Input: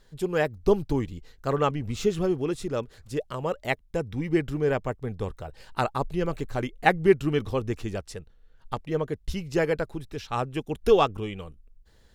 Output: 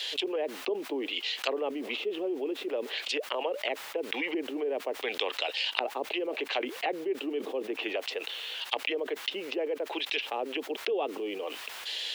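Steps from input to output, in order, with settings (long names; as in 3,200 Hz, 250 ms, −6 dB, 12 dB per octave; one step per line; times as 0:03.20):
Butterworth high-pass 270 Hz 48 dB per octave
high shelf with overshoot 2,000 Hz +13 dB, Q 3
treble cut that deepens with the level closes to 370 Hz, closed at −23.5 dBFS
bit-depth reduction 12 bits, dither triangular
three-way crossover with the lows and the highs turned down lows −21 dB, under 560 Hz, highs −14 dB, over 3,800 Hz
envelope flattener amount 70%
level +2 dB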